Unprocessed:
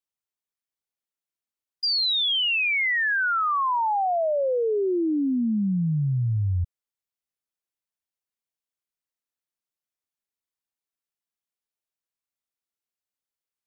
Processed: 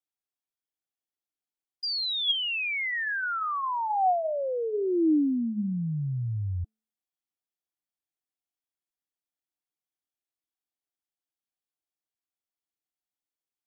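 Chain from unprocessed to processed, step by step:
hum removal 219.5 Hz, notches 9
hollow resonant body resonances 310/740/3,300 Hz, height 9 dB, ringing for 40 ms
level −6.5 dB

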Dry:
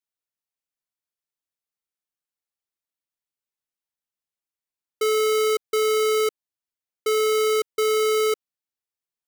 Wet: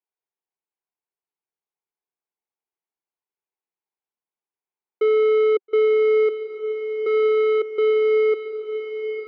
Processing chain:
loudspeaker in its box 260–2,100 Hz, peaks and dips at 270 Hz −8 dB, 390 Hz +4 dB, 580 Hz −8 dB, 830 Hz +3 dB, 1,300 Hz −8 dB, 1,800 Hz −9 dB
on a send: feedback delay with all-pass diffusion 908 ms, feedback 68%, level −10 dB
on the sum: level +4.5 dB

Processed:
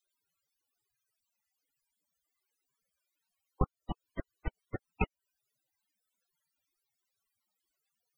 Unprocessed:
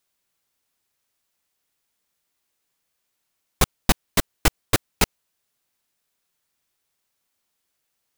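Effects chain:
0:03.76–0:04.89: volume swells 144 ms
downward compressor 4 to 1, threshold −27 dBFS, peak gain reduction 12 dB
spectral peaks only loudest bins 32
level +2 dB

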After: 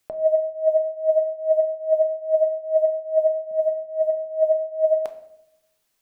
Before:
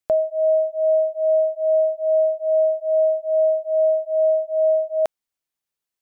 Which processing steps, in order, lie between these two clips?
compressor whose output falls as the input rises −26 dBFS, ratio −0.5
0:03.51–0:04.17: low shelf with overshoot 280 Hz +10.5 dB, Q 3
rectangular room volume 210 cubic metres, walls mixed, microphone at 0.39 metres
level +6 dB

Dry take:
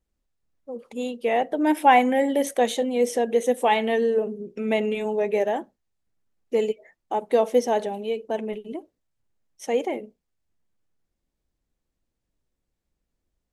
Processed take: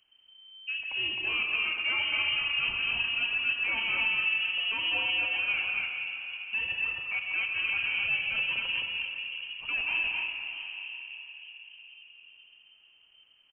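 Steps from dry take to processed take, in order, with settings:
low-shelf EQ 160 Hz −5.5 dB
reversed playback
downward compressor, threshold −28 dBFS, peak gain reduction 16 dB
reversed playback
soft clipping −28 dBFS, distortion −14 dB
on a send: loudspeakers that aren't time-aligned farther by 45 metres −11 dB, 70 metres −9 dB, 90 metres −2 dB
on the sum: rectangular room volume 180 cubic metres, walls hard, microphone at 0.31 metres
voice inversion scrambler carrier 3,100 Hz
multiband upward and downward compressor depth 40%

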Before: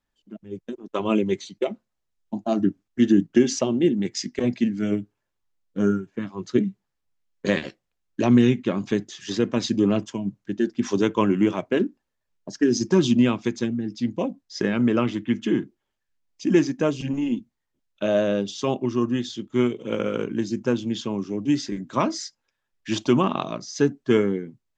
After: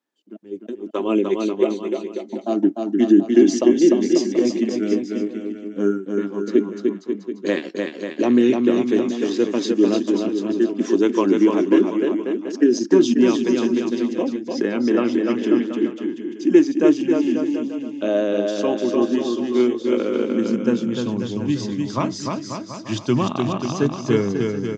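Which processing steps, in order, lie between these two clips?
bouncing-ball delay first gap 300 ms, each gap 0.8×, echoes 5
high-pass filter sweep 310 Hz → 99 Hz, 0:20.15–0:21.50
level −1.5 dB

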